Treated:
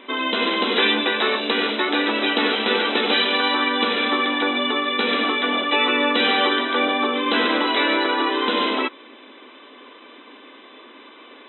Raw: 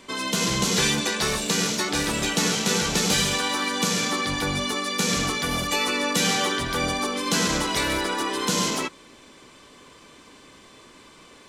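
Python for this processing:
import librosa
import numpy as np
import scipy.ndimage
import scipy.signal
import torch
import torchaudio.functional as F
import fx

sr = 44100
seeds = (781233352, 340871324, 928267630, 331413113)

y = fx.brickwall_bandpass(x, sr, low_hz=220.0, high_hz=4000.0)
y = y * librosa.db_to_amplitude(6.0)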